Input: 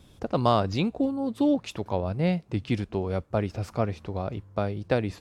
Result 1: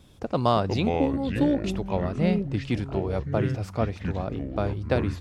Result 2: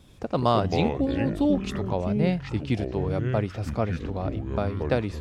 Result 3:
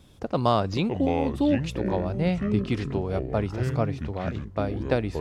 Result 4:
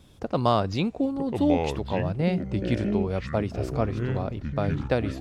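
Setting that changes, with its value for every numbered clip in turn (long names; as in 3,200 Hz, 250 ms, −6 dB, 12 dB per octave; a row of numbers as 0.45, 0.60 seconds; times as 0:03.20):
delay with pitch and tempo change per echo, delay time: 225, 80, 425, 856 milliseconds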